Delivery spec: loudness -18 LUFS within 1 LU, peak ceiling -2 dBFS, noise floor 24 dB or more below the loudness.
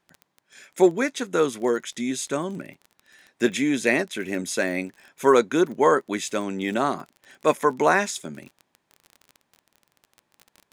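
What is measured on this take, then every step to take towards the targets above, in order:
tick rate 26 per s; loudness -23.5 LUFS; peak level -4.0 dBFS; loudness target -18.0 LUFS
-> de-click; trim +5.5 dB; peak limiter -2 dBFS

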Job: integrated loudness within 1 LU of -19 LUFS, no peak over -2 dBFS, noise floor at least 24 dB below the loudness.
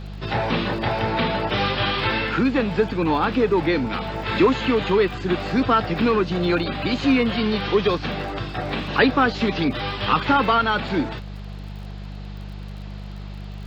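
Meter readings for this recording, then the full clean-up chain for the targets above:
tick rate 33 per s; hum 50 Hz; highest harmonic 200 Hz; hum level -32 dBFS; loudness -21.5 LUFS; peak level -5.5 dBFS; loudness target -19.0 LUFS
-> de-click; de-hum 50 Hz, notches 4; trim +2.5 dB

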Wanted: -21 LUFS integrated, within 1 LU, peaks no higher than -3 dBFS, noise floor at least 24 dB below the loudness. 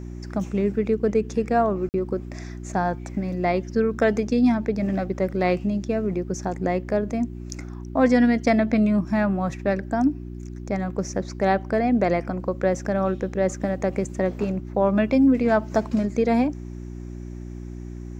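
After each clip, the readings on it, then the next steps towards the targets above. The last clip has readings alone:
dropouts 1; longest dropout 49 ms; hum 60 Hz; highest harmonic 360 Hz; hum level -33 dBFS; loudness -23.5 LUFS; peak level -7.5 dBFS; loudness target -21.0 LUFS
-> interpolate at 1.89 s, 49 ms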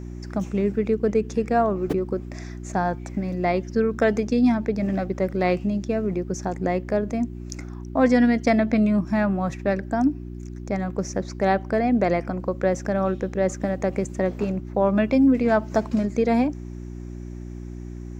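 dropouts 0; hum 60 Hz; highest harmonic 360 Hz; hum level -33 dBFS
-> de-hum 60 Hz, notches 6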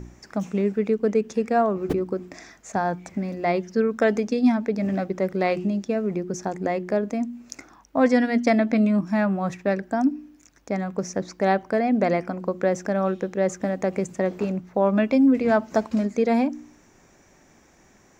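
hum not found; loudness -24.0 LUFS; peak level -7.5 dBFS; loudness target -21.0 LUFS
-> trim +3 dB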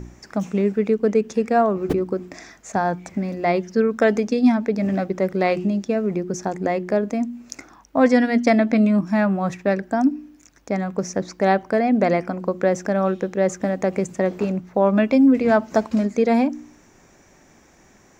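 loudness -21.0 LUFS; peak level -4.5 dBFS; noise floor -53 dBFS

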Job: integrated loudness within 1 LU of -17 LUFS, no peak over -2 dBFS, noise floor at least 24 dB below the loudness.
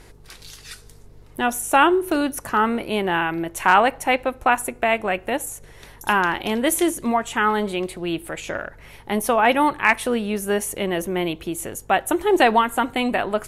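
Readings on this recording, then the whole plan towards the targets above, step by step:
hum 50 Hz; highest harmonic 150 Hz; hum level -47 dBFS; loudness -21.0 LUFS; peak level -3.5 dBFS; loudness target -17.0 LUFS
-> de-hum 50 Hz, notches 3; trim +4 dB; peak limiter -2 dBFS

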